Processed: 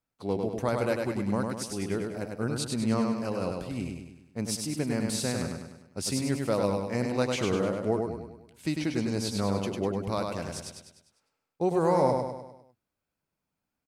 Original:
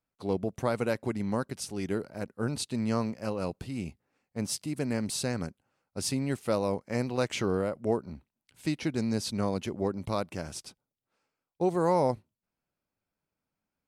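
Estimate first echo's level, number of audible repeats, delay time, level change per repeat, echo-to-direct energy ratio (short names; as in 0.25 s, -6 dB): -4.0 dB, 6, 0.1 s, -6.0 dB, -3.0 dB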